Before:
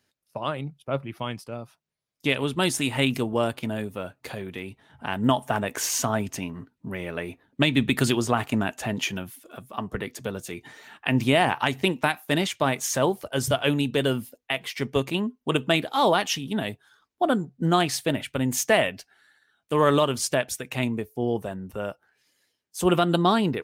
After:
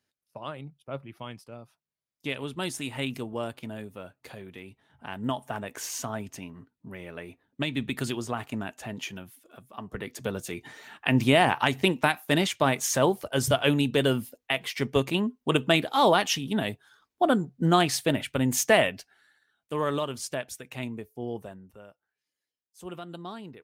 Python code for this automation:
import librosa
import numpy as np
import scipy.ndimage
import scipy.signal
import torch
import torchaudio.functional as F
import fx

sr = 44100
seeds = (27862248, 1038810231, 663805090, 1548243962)

y = fx.gain(x, sr, db=fx.line((9.79, -8.5), (10.27, 0.0), (18.82, 0.0), (19.9, -8.5), (21.45, -8.5), (21.87, -19.0)))